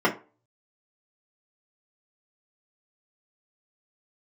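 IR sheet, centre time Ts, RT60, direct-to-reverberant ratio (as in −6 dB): 14 ms, 0.35 s, −4.5 dB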